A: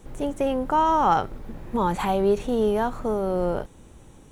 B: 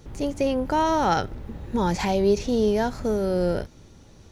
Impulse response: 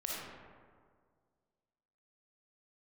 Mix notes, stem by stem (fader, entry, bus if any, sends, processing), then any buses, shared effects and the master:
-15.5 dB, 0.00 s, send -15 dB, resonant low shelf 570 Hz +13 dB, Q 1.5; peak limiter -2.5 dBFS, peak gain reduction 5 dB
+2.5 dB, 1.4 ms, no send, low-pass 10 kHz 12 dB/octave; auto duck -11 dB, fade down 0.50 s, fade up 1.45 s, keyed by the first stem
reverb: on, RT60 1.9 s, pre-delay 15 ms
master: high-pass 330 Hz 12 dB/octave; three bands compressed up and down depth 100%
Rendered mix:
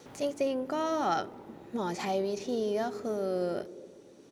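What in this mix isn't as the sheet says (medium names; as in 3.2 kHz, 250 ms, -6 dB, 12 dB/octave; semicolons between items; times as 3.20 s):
stem B: missing low-pass 10 kHz 12 dB/octave; master: missing three bands compressed up and down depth 100%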